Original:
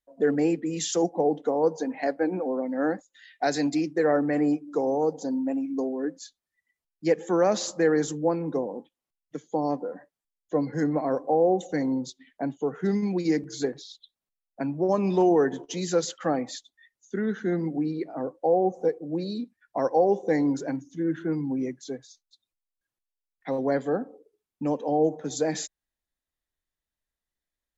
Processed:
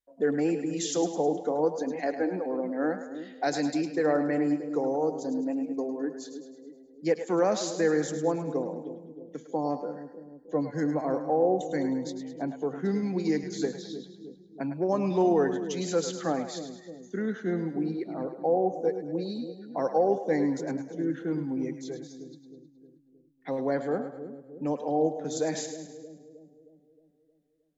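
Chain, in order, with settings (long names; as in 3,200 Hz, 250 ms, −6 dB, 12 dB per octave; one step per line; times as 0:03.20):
echo with a time of its own for lows and highs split 500 Hz, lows 312 ms, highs 105 ms, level −9.5 dB
level −3 dB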